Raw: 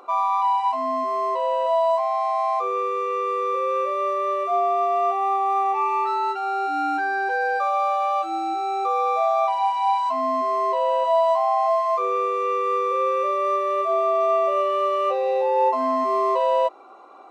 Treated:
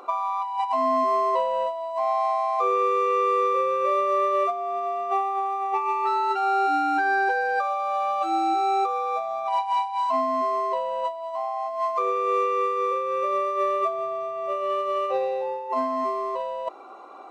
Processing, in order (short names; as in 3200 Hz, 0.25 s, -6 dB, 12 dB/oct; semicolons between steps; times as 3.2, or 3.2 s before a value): negative-ratio compressor -24 dBFS, ratio -0.5